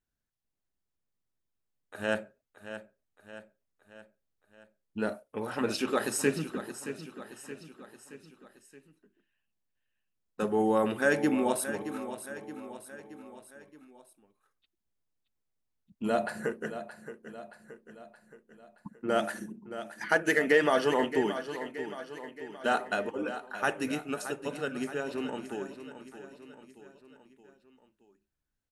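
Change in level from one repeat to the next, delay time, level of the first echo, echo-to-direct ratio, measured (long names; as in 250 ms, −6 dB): −5.5 dB, 623 ms, −11.5 dB, −10.0 dB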